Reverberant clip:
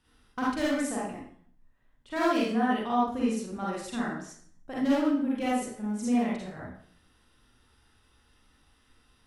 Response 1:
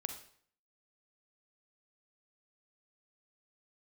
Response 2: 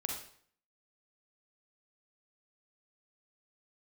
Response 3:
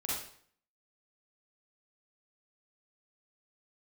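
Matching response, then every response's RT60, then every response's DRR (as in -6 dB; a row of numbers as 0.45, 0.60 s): 3; 0.55, 0.55, 0.55 s; 6.0, 0.5, -7.0 dB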